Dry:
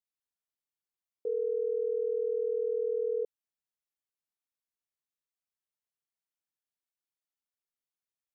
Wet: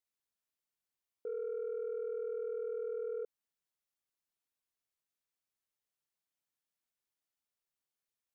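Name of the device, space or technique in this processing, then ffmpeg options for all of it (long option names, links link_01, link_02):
soft clipper into limiter: -af "asoftclip=type=tanh:threshold=-25.5dB,alimiter=level_in=11dB:limit=-24dB:level=0:latency=1:release=59,volume=-11dB,volume=1dB"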